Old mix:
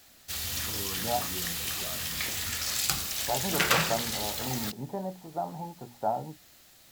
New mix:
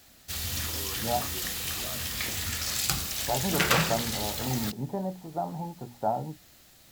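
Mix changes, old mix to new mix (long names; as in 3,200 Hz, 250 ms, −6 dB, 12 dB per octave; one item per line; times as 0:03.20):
first voice: add high-pass filter 400 Hz 12 dB per octave
master: add low-shelf EQ 310 Hz +6 dB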